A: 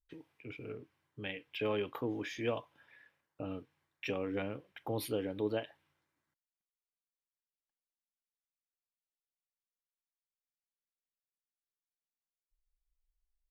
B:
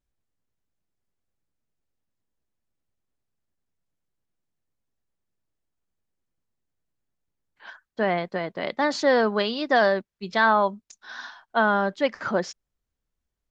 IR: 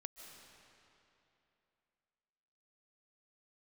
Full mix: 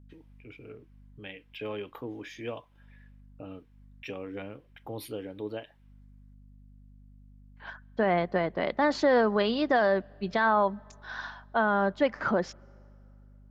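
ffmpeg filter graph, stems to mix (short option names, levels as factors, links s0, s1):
-filter_complex "[0:a]volume=0.794,asplit=2[s0][s1];[1:a]aemphasis=mode=reproduction:type=75kf,aeval=exprs='val(0)+0.002*(sin(2*PI*50*n/s)+sin(2*PI*2*50*n/s)/2+sin(2*PI*3*50*n/s)/3+sin(2*PI*4*50*n/s)/4+sin(2*PI*5*50*n/s)/5)':c=same,alimiter=limit=0.15:level=0:latency=1:release=130,volume=1.19,asplit=2[s2][s3];[s3]volume=0.0891[s4];[s1]apad=whole_len=595370[s5];[s2][s5]sidechaincompress=threshold=0.00158:ratio=8:attack=16:release=201[s6];[2:a]atrim=start_sample=2205[s7];[s4][s7]afir=irnorm=-1:irlink=0[s8];[s0][s6][s8]amix=inputs=3:normalize=0"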